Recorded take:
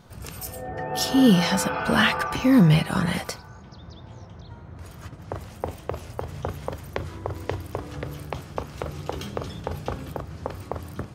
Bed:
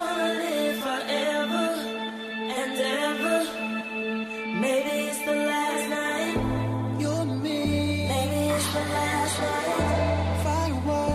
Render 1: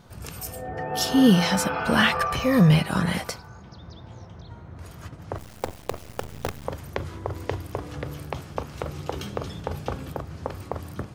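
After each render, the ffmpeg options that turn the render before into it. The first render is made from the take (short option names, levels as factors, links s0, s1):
-filter_complex "[0:a]asettb=1/sr,asplit=3[s0][s1][s2];[s0]atrim=end=2.154[s3];[s1]atrim=start=2.15:end=2.71,asetpts=PTS-STARTPTS,afade=t=in:d=0.004:c=qsin,afade=t=out:st=0.556:d=0.004:c=qsin,aecho=1:1:1.7:0.61,atrim=end_sample=24696[s4];[s2]atrim=start=2.706[s5];[s3][s4]acrossfade=d=0.004:c1=hsin:c2=qsin[s6];[s6][s5]acrossfade=d=0.004:c1=qsin:c2=hsin,asettb=1/sr,asplit=3[s7][s8][s9];[s7]atrim=end=5.384[s10];[s8]atrim=start=5.38:end=6.65,asetpts=PTS-STARTPTS,afade=t=in:d=0.004:c=qsin,afade=t=out:st=1.266:d=0.004:c=qsin,acrusher=bits=5:dc=4:mix=0:aa=0.000001[s11];[s9]atrim=start=6.646[s12];[s10][s11]acrossfade=d=0.004:c1=hsin:c2=qsin[s13];[s13][s12]acrossfade=d=0.004:c1=qsin:c2=hsin"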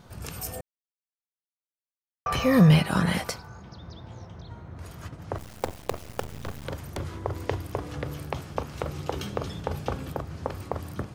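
-filter_complex "[0:a]asettb=1/sr,asplit=3[s0][s1][s2];[s0]atrim=end=6.264[s3];[s1]atrim=start=6.26:end=7.15,asetpts=PTS-STARTPTS,afade=t=in:d=0.004:c=qsin,afade=t=out:st=0.886:d=0.004:c=qsin,aeval=exprs='0.0708*(abs(mod(val(0)/0.0708+3,4)-2)-1)':c=same[s4];[s2]atrim=start=7.146[s5];[s3][s4]acrossfade=d=0.004:c1=hsin:c2=qsin[s6];[s6][s5]acrossfade=d=0.004:c1=qsin:c2=hsin,asplit=3[s7][s8][s9];[s7]atrim=end=0.61,asetpts=PTS-STARTPTS,afade=t=out:st=0.606:d=0.004:c=hsin[s10];[s8]atrim=start=0.61:end=2.26,asetpts=PTS-STARTPTS,volume=0[s11];[s9]atrim=start=2.26,asetpts=PTS-STARTPTS,afade=t=in:d=0.004:c=hsin[s12];[s10][s11][s12]concat=n=3:v=0:a=1"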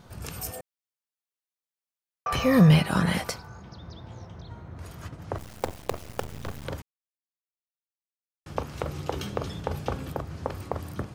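-filter_complex "[0:a]asettb=1/sr,asplit=3[s0][s1][s2];[s0]atrim=end=0.514[s3];[s1]atrim=start=0.51:end=2.33,asetpts=PTS-STARTPTS,afade=t=in:d=0.004:c=qsin,afade=t=out:st=1.816:d=0.004:c=qsin,highpass=f=340:p=1[s4];[s2]atrim=start=2.326[s5];[s3][s4]acrossfade=d=0.004:c1=hsin:c2=qsin[s6];[s6][s5]acrossfade=d=0.004:c1=qsin:c2=hsin,asplit=3[s7][s8][s9];[s7]atrim=end=6.82,asetpts=PTS-STARTPTS,afade=t=out:st=6.816:d=0.004:c=hsin[s10];[s8]atrim=start=6.82:end=8.46,asetpts=PTS-STARTPTS,volume=0[s11];[s9]atrim=start=8.46,asetpts=PTS-STARTPTS,afade=t=in:d=0.004:c=hsin[s12];[s10][s11][s12]concat=n=3:v=0:a=1"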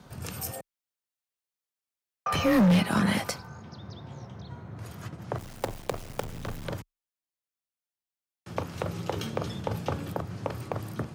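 -af "afreqshift=23,asoftclip=type=hard:threshold=0.133"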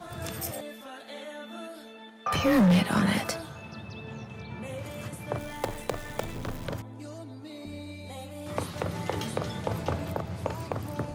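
-filter_complex "[1:a]volume=0.168[s0];[0:a][s0]amix=inputs=2:normalize=0"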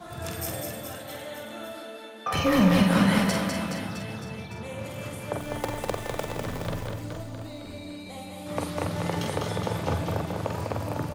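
-filter_complex "[0:a]asplit=2[s0][s1];[s1]adelay=47,volume=0.501[s2];[s0][s2]amix=inputs=2:normalize=0,aecho=1:1:200|420|662|928.2|1221:0.631|0.398|0.251|0.158|0.1"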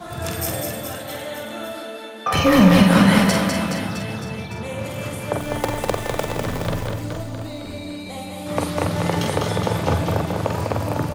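-af "volume=2.37,alimiter=limit=0.708:level=0:latency=1"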